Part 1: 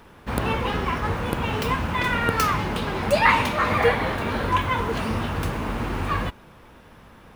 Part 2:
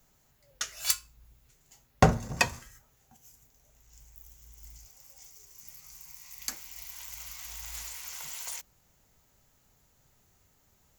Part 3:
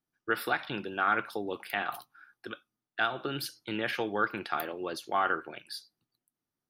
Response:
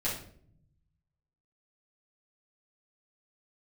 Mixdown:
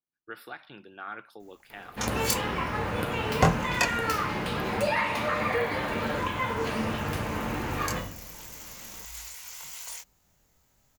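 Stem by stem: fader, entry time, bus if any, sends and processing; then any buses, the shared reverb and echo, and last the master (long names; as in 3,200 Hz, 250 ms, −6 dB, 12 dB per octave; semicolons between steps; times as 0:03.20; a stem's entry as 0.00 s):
−6.5 dB, 1.70 s, send −4 dB, low-shelf EQ 160 Hz −11.5 dB; downward compressor 3 to 1, threshold −24 dBFS, peak gain reduction 9 dB
+2.5 dB, 1.40 s, no send, chorus effect 1.8 Hz, depth 2.8 ms
−12.0 dB, 0.00 s, no send, no processing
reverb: on, RT60 0.60 s, pre-delay 6 ms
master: no processing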